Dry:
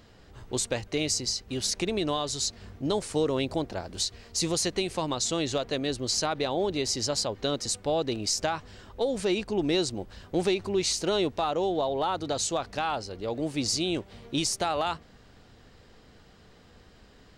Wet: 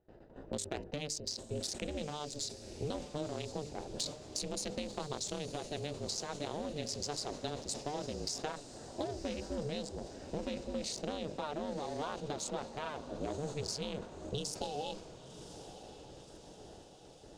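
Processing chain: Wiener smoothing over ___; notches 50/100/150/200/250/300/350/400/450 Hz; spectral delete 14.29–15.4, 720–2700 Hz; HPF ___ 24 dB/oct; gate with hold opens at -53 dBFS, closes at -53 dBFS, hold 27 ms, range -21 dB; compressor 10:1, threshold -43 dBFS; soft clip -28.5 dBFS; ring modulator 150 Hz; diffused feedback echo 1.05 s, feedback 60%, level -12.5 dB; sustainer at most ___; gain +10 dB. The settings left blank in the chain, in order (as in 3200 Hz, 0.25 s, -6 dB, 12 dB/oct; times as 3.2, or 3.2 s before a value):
41 samples, 170 Hz, 100 dB/s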